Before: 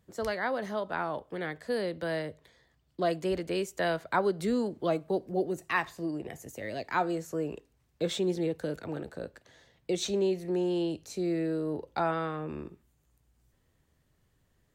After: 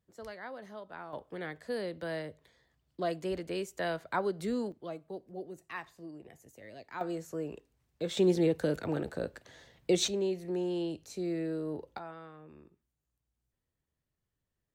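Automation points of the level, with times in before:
−12.5 dB
from 0:01.13 −4.5 dB
from 0:04.72 −12.5 dB
from 0:07.01 −4.5 dB
from 0:08.17 +3.5 dB
from 0:10.08 −4 dB
from 0:11.98 −16 dB

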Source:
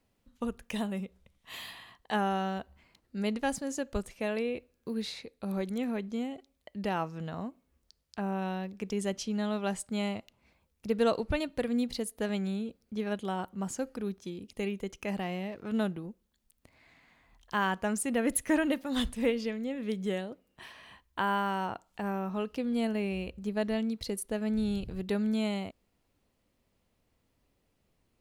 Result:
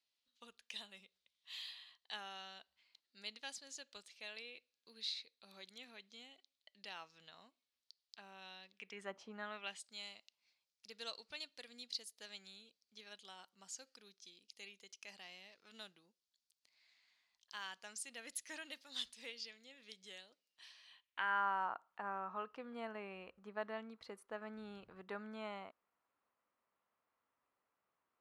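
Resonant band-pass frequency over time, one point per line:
resonant band-pass, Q 2.3
0:08.70 4,100 Hz
0:09.22 850 Hz
0:09.88 4,800 Hz
0:20.85 4,800 Hz
0:21.46 1,200 Hz

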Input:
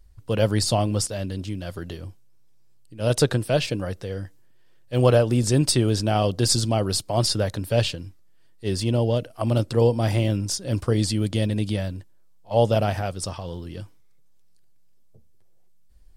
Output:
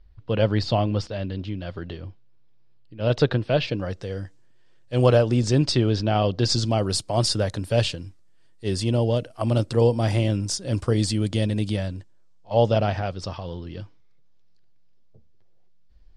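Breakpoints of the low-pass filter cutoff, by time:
low-pass filter 24 dB per octave
0:03.60 4,200 Hz
0:04.06 8,100 Hz
0:05.06 8,100 Hz
0:06.23 4,300 Hz
0:06.93 9,500 Hz
0:11.69 9,500 Hz
0:12.93 5,200 Hz

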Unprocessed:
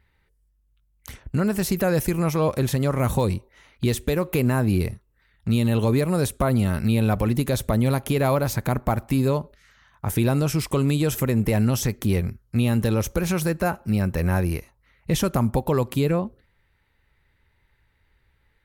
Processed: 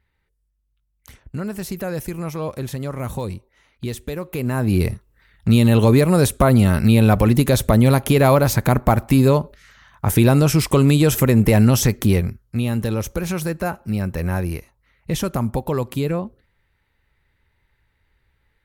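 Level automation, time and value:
0:04.31 −5 dB
0:04.92 +7 dB
0:12.00 +7 dB
0:12.55 −0.5 dB

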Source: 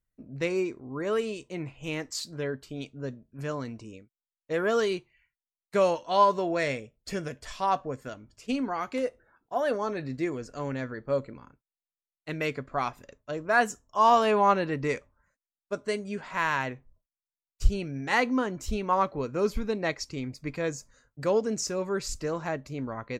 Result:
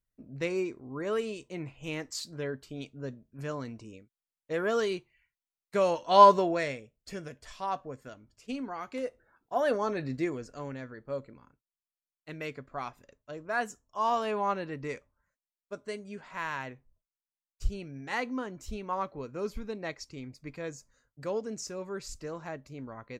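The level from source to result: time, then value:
0:05.85 −3 dB
0:06.27 +5.5 dB
0:06.77 −7 dB
0:08.83 −7 dB
0:09.61 0 dB
0:10.15 0 dB
0:10.82 −8 dB

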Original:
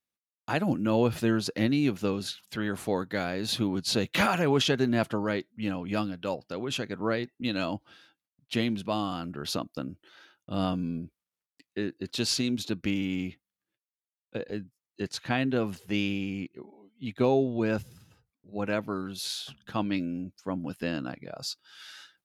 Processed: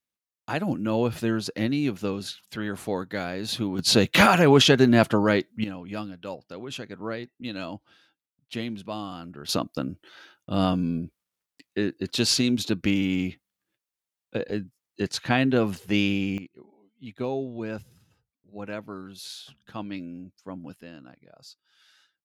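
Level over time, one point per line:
0 dB
from 0:03.79 +8 dB
from 0:05.64 −4 dB
from 0:09.49 +5.5 dB
from 0:16.38 −5.5 dB
from 0:20.81 −13 dB

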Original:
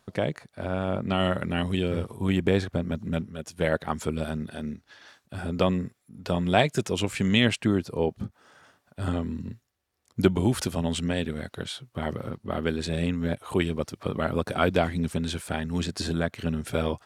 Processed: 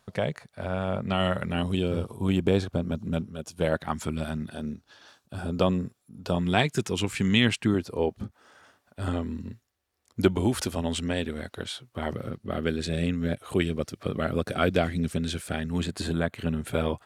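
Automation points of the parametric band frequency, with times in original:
parametric band −9 dB 0.44 octaves
310 Hz
from 0:01.55 1,900 Hz
from 0:03.74 460 Hz
from 0:04.52 2,000 Hz
from 0:06.39 590 Hz
from 0:07.74 150 Hz
from 0:12.13 930 Hz
from 0:15.70 5,500 Hz

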